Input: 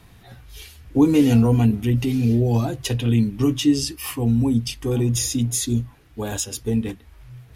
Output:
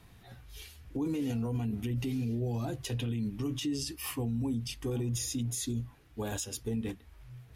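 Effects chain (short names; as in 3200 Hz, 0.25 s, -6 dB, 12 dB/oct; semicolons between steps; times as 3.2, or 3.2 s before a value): limiter -18.5 dBFS, peak gain reduction 12 dB; gain -7.5 dB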